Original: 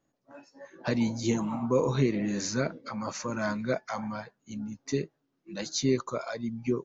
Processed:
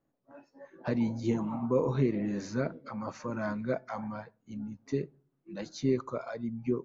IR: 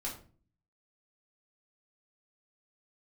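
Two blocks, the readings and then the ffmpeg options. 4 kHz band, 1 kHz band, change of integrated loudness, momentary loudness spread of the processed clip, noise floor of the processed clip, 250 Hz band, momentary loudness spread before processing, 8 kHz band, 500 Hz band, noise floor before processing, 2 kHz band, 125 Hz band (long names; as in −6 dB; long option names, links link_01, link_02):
−12.0 dB, −3.5 dB, −2.5 dB, 13 LU, −77 dBFS, −2.0 dB, 12 LU, can't be measured, −2.0 dB, −78 dBFS, −6.0 dB, −2.0 dB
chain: -filter_complex "[0:a]lowpass=frequency=1300:poles=1,asplit=2[link_01][link_02];[1:a]atrim=start_sample=2205,asetrate=48510,aresample=44100[link_03];[link_02][link_03]afir=irnorm=-1:irlink=0,volume=-21dB[link_04];[link_01][link_04]amix=inputs=2:normalize=0,volume=-2dB"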